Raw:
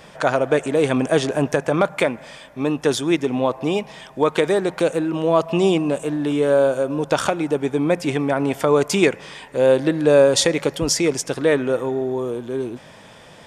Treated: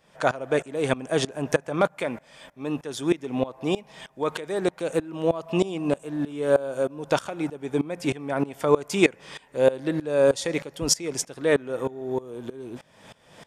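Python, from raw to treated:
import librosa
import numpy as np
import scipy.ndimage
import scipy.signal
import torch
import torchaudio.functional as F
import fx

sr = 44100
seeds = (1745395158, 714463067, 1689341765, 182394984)

y = fx.high_shelf(x, sr, hz=9600.0, db=4.0)
y = fx.tremolo_decay(y, sr, direction='swelling', hz=3.2, depth_db=21)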